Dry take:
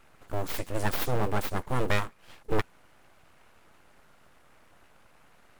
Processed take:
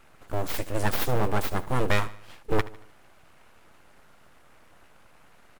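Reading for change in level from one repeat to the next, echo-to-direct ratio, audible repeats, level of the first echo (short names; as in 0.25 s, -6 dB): -6.5 dB, -17.0 dB, 3, -18.0 dB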